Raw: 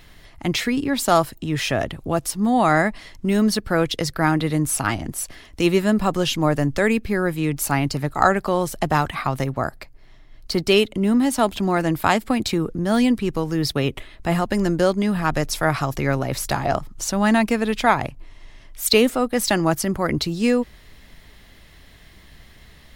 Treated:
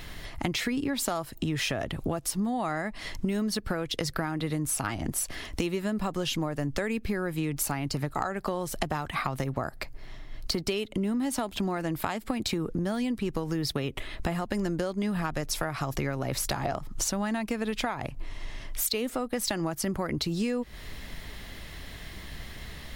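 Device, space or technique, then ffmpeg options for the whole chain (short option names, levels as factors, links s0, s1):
serial compression, leveller first: -af "acompressor=threshold=0.0708:ratio=2.5,acompressor=threshold=0.0224:ratio=6,volume=2"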